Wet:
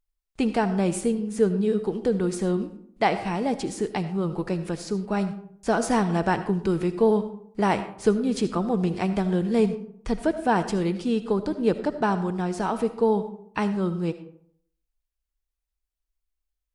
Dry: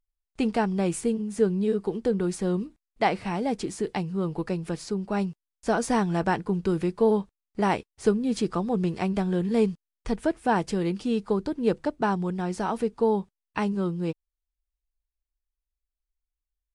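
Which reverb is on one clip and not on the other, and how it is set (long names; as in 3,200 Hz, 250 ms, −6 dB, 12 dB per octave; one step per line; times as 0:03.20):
comb and all-pass reverb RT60 0.65 s, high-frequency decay 0.5×, pre-delay 35 ms, DRR 11 dB
level +1.5 dB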